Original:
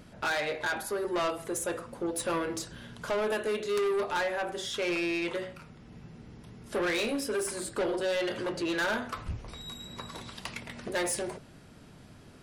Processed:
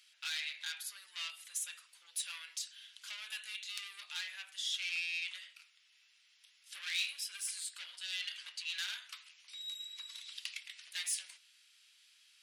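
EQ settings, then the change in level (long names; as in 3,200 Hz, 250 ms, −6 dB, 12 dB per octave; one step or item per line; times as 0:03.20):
four-pole ladder high-pass 2,300 Hz, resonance 30%
high-shelf EQ 12,000 Hz −4 dB
+4.5 dB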